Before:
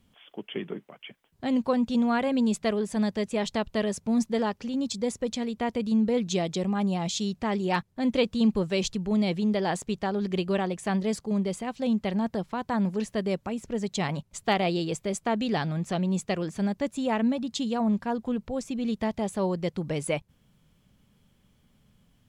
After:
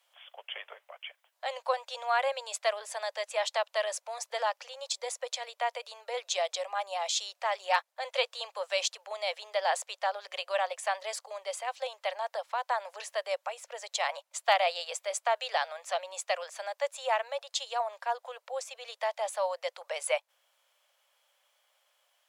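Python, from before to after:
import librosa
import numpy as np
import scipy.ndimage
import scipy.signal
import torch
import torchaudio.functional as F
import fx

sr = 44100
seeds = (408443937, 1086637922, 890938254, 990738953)

y = scipy.signal.sosfilt(scipy.signal.butter(12, 540.0, 'highpass', fs=sr, output='sos'), x)
y = y * librosa.db_to_amplitude(1.5)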